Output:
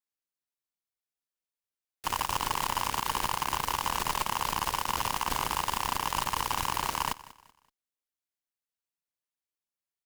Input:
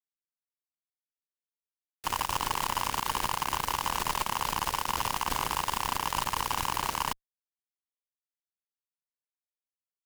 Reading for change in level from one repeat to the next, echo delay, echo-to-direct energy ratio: -9.5 dB, 0.19 s, -18.5 dB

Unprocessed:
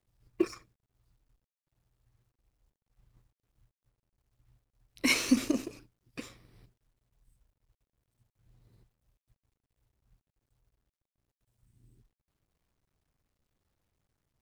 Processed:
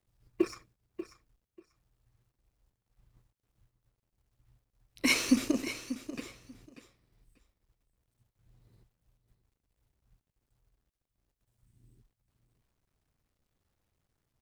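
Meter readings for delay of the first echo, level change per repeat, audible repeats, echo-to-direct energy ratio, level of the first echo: 0.589 s, -15.5 dB, 2, -12.5 dB, -12.5 dB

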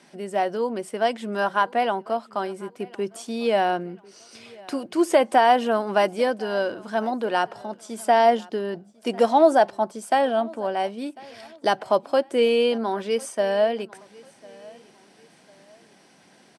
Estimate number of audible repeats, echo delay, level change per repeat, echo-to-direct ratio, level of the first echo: 2, 1.048 s, -9.0 dB, -23.0 dB, -23.5 dB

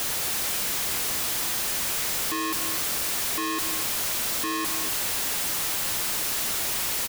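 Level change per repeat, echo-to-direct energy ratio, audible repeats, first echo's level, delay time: no steady repeat, -9.5 dB, 1, -9.5 dB, 0.244 s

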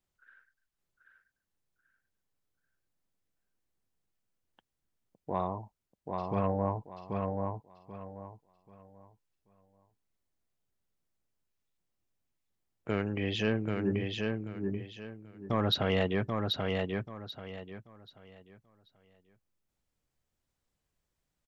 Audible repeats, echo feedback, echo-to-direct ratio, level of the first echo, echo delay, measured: 3, 27%, -3.0 dB, -3.5 dB, 0.785 s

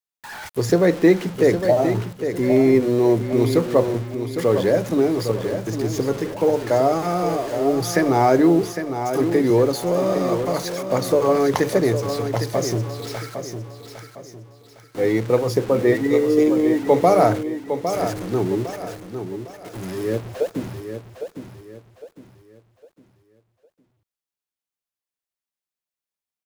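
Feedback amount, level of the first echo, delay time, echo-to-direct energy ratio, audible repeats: 35%, -8.5 dB, 0.807 s, -8.0 dB, 3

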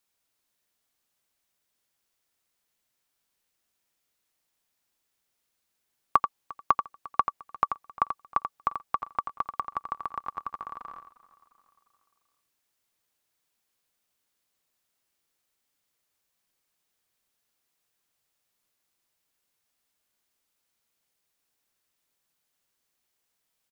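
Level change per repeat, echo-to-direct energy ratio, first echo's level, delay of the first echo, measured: no steady repeat, -7.5 dB, -8.0 dB, 86 ms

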